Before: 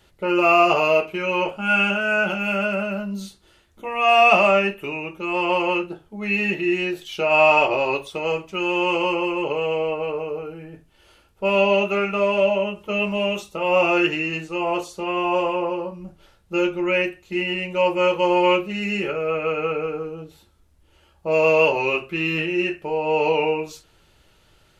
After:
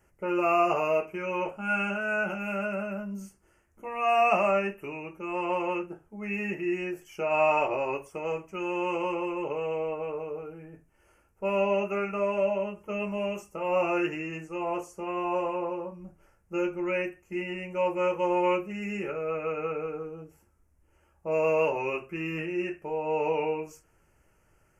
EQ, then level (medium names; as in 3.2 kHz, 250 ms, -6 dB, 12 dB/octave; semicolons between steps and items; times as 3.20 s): Butterworth band-stop 3.8 kHz, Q 1.1; -7.5 dB